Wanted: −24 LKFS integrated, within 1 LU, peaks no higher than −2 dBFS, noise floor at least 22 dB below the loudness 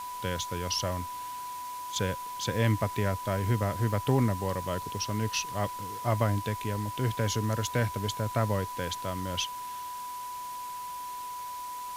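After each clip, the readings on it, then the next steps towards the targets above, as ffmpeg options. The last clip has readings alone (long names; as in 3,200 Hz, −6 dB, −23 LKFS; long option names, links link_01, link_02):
interfering tone 990 Hz; level of the tone −36 dBFS; background noise floor −39 dBFS; target noise floor −54 dBFS; integrated loudness −31.5 LKFS; sample peak −11.5 dBFS; target loudness −24.0 LKFS
→ -af "bandreject=frequency=990:width=30"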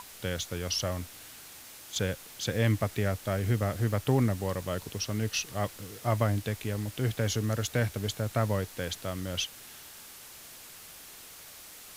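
interfering tone none found; background noise floor −49 dBFS; target noise floor −53 dBFS
→ -af "afftdn=noise_reduction=6:noise_floor=-49"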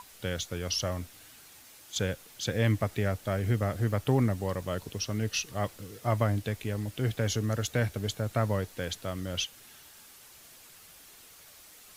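background noise floor −54 dBFS; integrated loudness −31.0 LKFS; sample peak −12.0 dBFS; target loudness −24.0 LKFS
→ -af "volume=7dB"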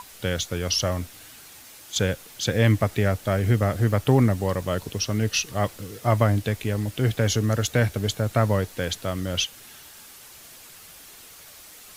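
integrated loudness −24.0 LKFS; sample peak −5.0 dBFS; background noise floor −47 dBFS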